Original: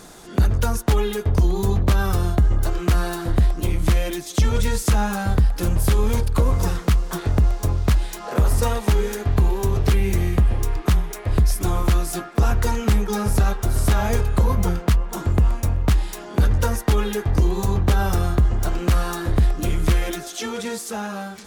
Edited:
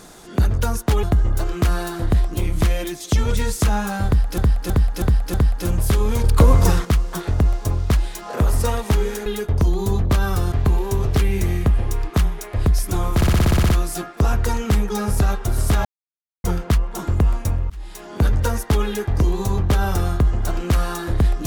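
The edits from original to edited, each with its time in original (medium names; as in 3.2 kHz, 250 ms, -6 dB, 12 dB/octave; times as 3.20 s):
1.03–2.29 s: move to 9.24 s
5.32–5.64 s: loop, 5 plays
6.22–6.83 s: gain +6 dB
11.87 s: stutter 0.06 s, 10 plays
14.03–14.62 s: mute
15.88–16.31 s: fade in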